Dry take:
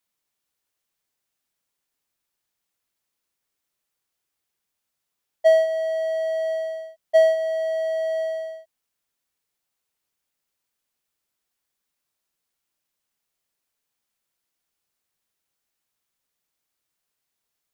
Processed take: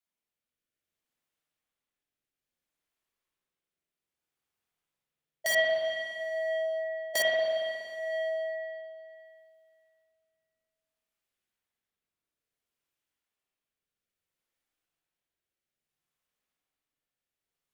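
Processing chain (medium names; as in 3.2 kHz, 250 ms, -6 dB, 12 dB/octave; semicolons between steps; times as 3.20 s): rotary cabinet horn 0.6 Hz; integer overflow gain 17 dB; spring tank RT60 2.4 s, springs 46/59 ms, chirp 75 ms, DRR -5 dB; trim -8 dB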